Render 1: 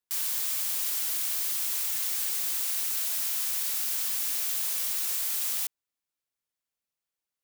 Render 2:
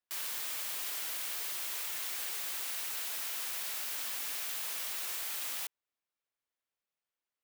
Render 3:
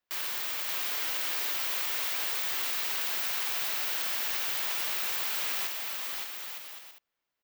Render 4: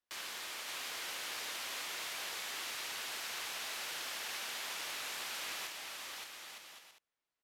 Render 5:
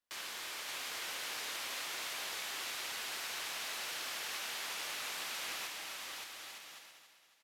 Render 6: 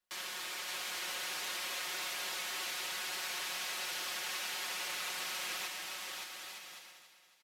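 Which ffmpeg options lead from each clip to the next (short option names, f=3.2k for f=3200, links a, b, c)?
-af "bass=f=250:g=-7,treble=f=4k:g=-9"
-af "equalizer=f=10k:t=o:w=1.1:g=-10.5,aecho=1:1:570|912|1117|1240|1314:0.631|0.398|0.251|0.158|0.1,volume=6.5dB"
-af "lowpass=f=12k:w=0.5412,lowpass=f=12k:w=1.3066,volume=-5.5dB"
-af "aecho=1:1:277|554|831|1108|1385:0.335|0.147|0.0648|0.0285|0.0126"
-af "aecho=1:1:5.5:0.73"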